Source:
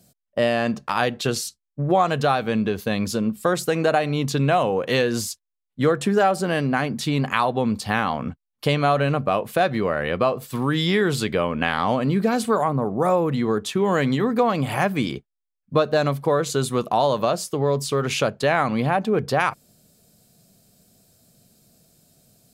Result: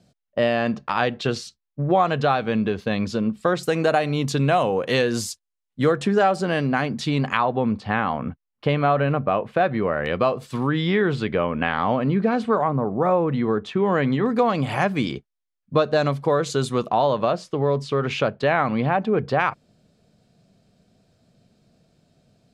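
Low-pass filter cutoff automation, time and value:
4,200 Hz
from 0:03.63 10,000 Hz
from 0:05.95 6,100 Hz
from 0:07.37 2,400 Hz
from 0:10.06 6,500 Hz
from 0:10.67 2,700 Hz
from 0:14.26 6,700 Hz
from 0:16.91 3,300 Hz

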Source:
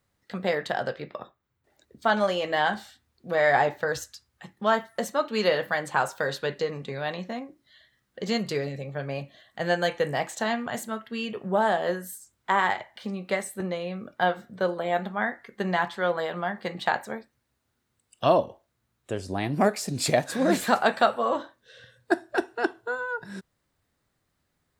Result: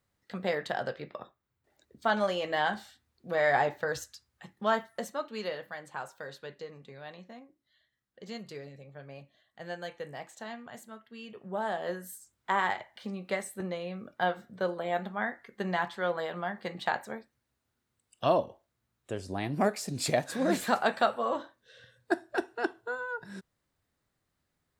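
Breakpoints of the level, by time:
0:04.78 −4.5 dB
0:05.66 −14.5 dB
0:11.13 −14.5 dB
0:12.15 −5 dB

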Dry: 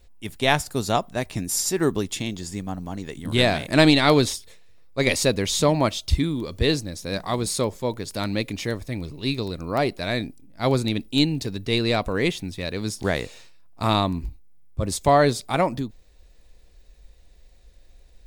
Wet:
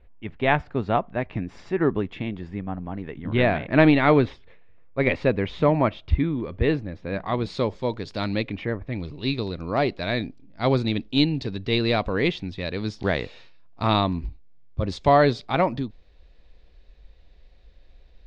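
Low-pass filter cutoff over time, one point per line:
low-pass filter 24 dB per octave
0:07.12 2,500 Hz
0:07.75 4,500 Hz
0:08.33 4,500 Hz
0:08.81 1,800 Hz
0:08.98 4,300 Hz

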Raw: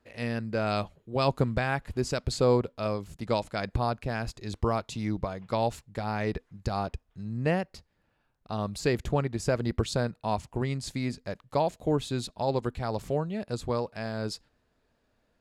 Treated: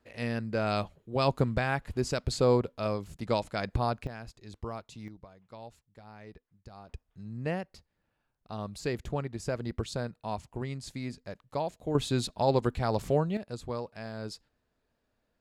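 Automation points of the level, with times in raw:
−1 dB
from 0:04.07 −11 dB
from 0:05.08 −19 dB
from 0:06.89 −6 dB
from 0:11.95 +2.5 dB
from 0:13.37 −6 dB

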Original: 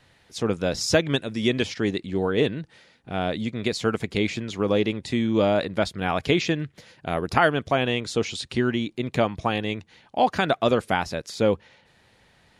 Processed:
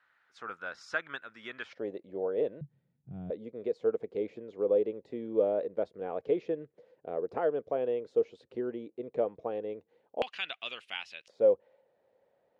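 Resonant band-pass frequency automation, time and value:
resonant band-pass, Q 4.8
1,400 Hz
from 0:01.73 550 Hz
from 0:02.61 140 Hz
from 0:03.30 480 Hz
from 0:10.22 2,800 Hz
from 0:11.28 540 Hz

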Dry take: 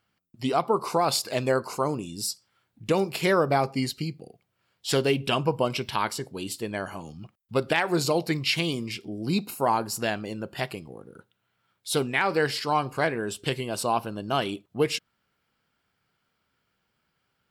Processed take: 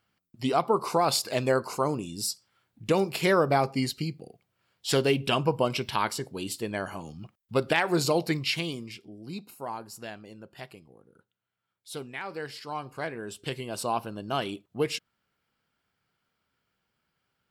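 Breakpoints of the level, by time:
0:08.28 −0.5 dB
0:09.27 −12.5 dB
0:12.47 −12.5 dB
0:13.84 −3.5 dB

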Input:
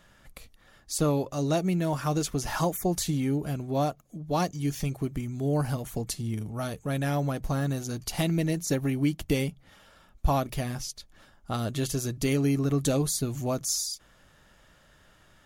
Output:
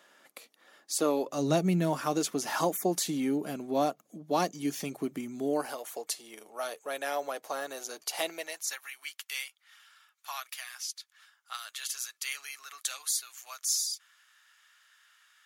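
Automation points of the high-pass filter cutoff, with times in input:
high-pass filter 24 dB per octave
0:01.20 290 Hz
0:01.71 91 Hz
0:01.99 220 Hz
0:05.40 220 Hz
0:05.80 460 Hz
0:08.27 460 Hz
0:08.84 1,300 Hz

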